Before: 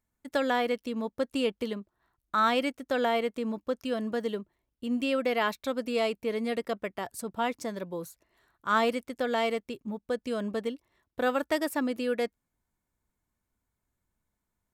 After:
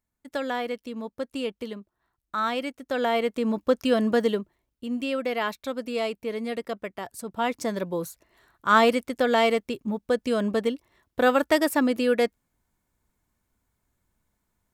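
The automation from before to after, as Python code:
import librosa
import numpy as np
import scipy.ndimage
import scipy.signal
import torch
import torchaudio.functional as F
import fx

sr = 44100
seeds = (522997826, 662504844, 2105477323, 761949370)

y = fx.gain(x, sr, db=fx.line((2.69, -2.0), (3.68, 9.0), (4.2, 9.0), (4.9, 0.0), (7.21, 0.0), (7.71, 7.0)))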